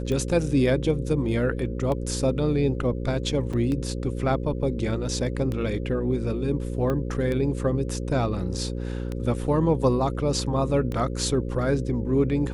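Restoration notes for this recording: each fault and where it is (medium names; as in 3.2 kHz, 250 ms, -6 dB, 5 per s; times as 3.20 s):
buzz 60 Hz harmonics 9 -30 dBFS
tick 33 1/3 rpm -18 dBFS
3.53–3.54 s: dropout 5.3 ms
6.90 s: pop -16 dBFS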